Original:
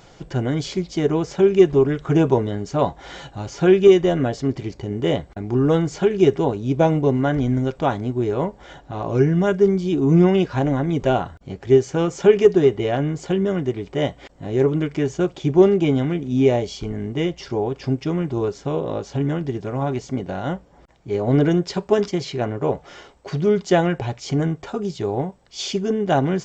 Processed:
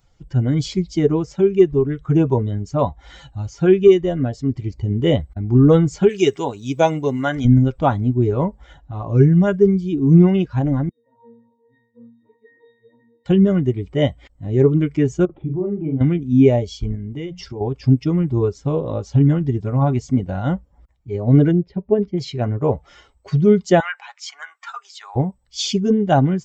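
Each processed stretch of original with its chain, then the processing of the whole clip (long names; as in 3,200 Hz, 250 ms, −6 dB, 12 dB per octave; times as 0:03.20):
0:06.09–0:07.45: spectral tilt +3 dB per octave + one half of a high-frequency compander encoder only
0:10.89–0:13.26: high-pass filter 450 Hz + delay with pitch and tempo change per echo 142 ms, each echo −2 semitones, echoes 3, each echo −6 dB + resonances in every octave A#, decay 0.79 s
0:15.25–0:16.01: downward compressor 2.5 to 1, threshold −29 dBFS + Gaussian smoothing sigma 4.3 samples + double-tracking delay 44 ms −4.5 dB
0:16.95–0:17.61: mains-hum notches 60/120/180/240 Hz + downward compressor 2.5 to 1, threshold −29 dBFS
0:21.51–0:22.18: low-pass filter 1,800 Hz + parametric band 1,200 Hz −9.5 dB 1.1 octaves
0:23.80–0:25.16: high-pass filter 910 Hz 24 dB per octave + parametric band 1,500 Hz +5 dB 1.4 octaves
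whole clip: spectral dynamics exaggerated over time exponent 1.5; low-shelf EQ 270 Hz +9 dB; automatic gain control gain up to 8.5 dB; level −1 dB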